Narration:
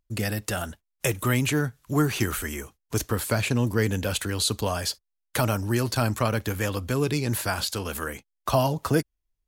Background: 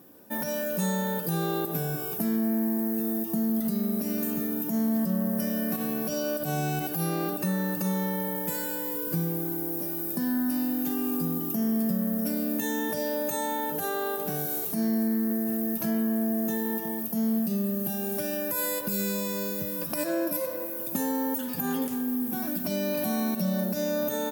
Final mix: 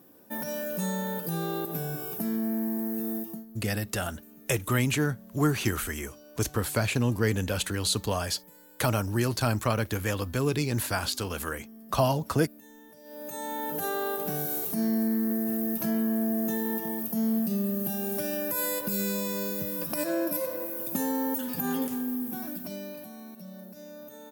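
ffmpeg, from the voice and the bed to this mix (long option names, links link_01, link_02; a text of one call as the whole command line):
ffmpeg -i stem1.wav -i stem2.wav -filter_complex "[0:a]adelay=3450,volume=-2dB[link_01];[1:a]volume=19dB,afade=type=out:start_time=3.16:duration=0.29:silence=0.105925,afade=type=in:start_time=13.03:duration=0.81:silence=0.0794328,afade=type=out:start_time=21.82:duration=1.28:silence=0.149624[link_02];[link_01][link_02]amix=inputs=2:normalize=0" out.wav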